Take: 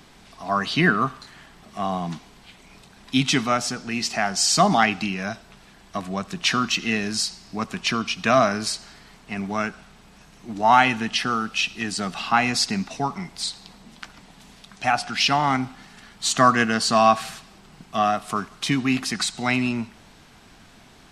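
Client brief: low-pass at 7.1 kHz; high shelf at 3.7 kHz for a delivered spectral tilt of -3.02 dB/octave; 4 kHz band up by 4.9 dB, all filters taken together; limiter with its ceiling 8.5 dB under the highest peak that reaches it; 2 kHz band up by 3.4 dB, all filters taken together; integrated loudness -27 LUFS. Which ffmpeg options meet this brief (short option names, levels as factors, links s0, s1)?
-af "lowpass=7100,equalizer=f=2000:t=o:g=3,highshelf=f=3700:g=-3,equalizer=f=4000:t=o:g=8,volume=0.562,alimiter=limit=0.2:level=0:latency=1"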